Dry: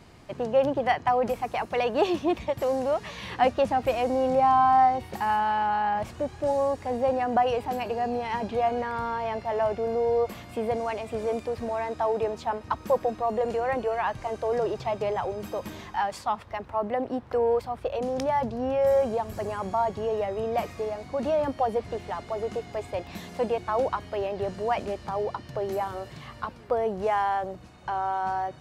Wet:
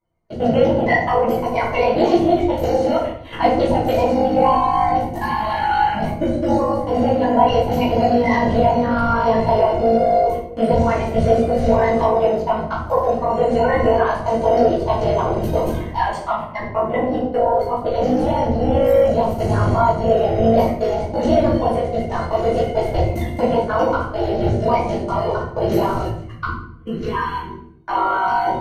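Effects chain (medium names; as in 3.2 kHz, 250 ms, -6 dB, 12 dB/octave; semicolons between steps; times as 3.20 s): coarse spectral quantiser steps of 30 dB; recorder AGC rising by 9.3 dB/s; time-frequency box 26.12–27.74 s, 450–970 Hz -22 dB; gate -33 dBFS, range -33 dB; bass shelf 340 Hz +6.5 dB; hum notches 60/120 Hz; AM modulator 52 Hz, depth 95%; rippled EQ curve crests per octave 1.9, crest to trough 8 dB; simulated room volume 120 m³, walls mixed, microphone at 2.5 m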